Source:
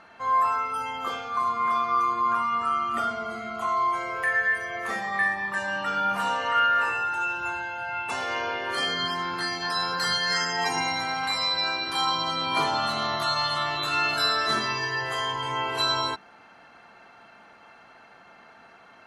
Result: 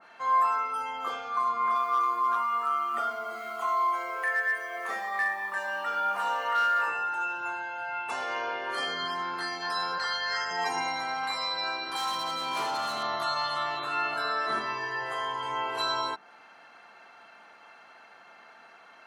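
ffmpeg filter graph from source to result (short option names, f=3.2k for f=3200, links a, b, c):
-filter_complex "[0:a]asettb=1/sr,asplit=3[a][b][c];[a]atrim=end=1.754[d];[b]atrim=start=1.75:end=6.88,asetpts=PTS-STARTPTS,afade=t=in:d=0.004:c=qsin,afade=t=out:st=5.126:d=0.004:c=qsin,highpass=310,acrusher=bits=7:mix=0:aa=0.5,volume=18dB,asoftclip=hard,volume=-18dB[e];[c]atrim=start=6.876[f];[d][e]acrossfade=d=0.004:c1=hsin:c2=qsin[g];[g][f]acrossfade=d=0.004:c1=qsin:c2=hsin,asettb=1/sr,asplit=3[h][i][j];[h]atrim=end=9.984[k];[i]atrim=start=9.98:end=10.51,asetpts=PTS-STARTPTS,afade=t=in:d=0.004:c=qsin,afade=t=out:st=0.526:d=0.004:c=qsin,acrossover=split=390 6600:gain=0.0708 1 0.0794[l][m][n];[l][m][n]amix=inputs=3:normalize=0,aeval=exprs='val(0)+0.00562*(sin(2*PI*50*n/s)+sin(2*PI*2*50*n/s)/2+sin(2*PI*3*50*n/s)/3+sin(2*PI*4*50*n/s)/4+sin(2*PI*5*50*n/s)/5)':c=same[o];[j]atrim=start=10.506[p];[k][o]acrossfade=d=0.004:c1=hsin:c2=qsin[q];[q][p]acrossfade=d=0.004:c1=qsin:c2=hsin,asettb=1/sr,asplit=3[r][s][t];[r]atrim=end=11.964[u];[s]atrim=start=11.96:end=13.03,asetpts=PTS-STARTPTS,afade=t=in:d=0.004:c=qsin,afade=t=out:st=1.066:d=0.004:c=qsin,highshelf=f=5.7k:g=7,asoftclip=type=hard:threshold=-24dB[v];[t]atrim=start=13.026[w];[u][v]acrossfade=d=0.004:c1=hsin:c2=qsin[x];[x][w]acrossfade=d=0.004:c1=qsin:c2=hsin,asettb=1/sr,asplit=3[y][z][aa];[y]atrim=end=13.794[ab];[z]atrim=start=13.79:end=15.41,asetpts=PTS-STARTPTS,afade=t=in:d=0.004:c=qsin,afade=t=out:st=1.616:d=0.004:c=qsin,acrossover=split=3300[ac][ad];[ad]acompressor=threshold=-43dB:ratio=4:attack=1:release=60[ae];[ac][ae]amix=inputs=2:normalize=0,equalizer=f=9.1k:w=3.3:g=6[af];[aa]atrim=start=15.406[ag];[ab][af]acrossfade=d=0.004:c1=hsin:c2=qsin[ah];[ah][ag]acrossfade=d=0.004:c1=qsin:c2=hsin,highpass=f=560:p=1,adynamicequalizer=threshold=0.0112:dfrequency=1700:dqfactor=0.7:tfrequency=1700:tqfactor=0.7:attack=5:release=100:ratio=0.375:range=3.5:mode=cutabove:tftype=highshelf"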